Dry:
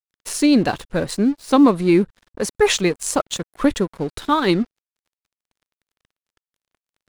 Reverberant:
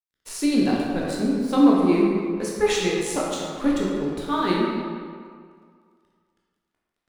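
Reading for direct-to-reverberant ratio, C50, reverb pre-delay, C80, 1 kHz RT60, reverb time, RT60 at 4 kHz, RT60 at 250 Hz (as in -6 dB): -4.5 dB, -1.0 dB, 11 ms, 1.0 dB, 2.0 s, 2.0 s, 1.3 s, 1.9 s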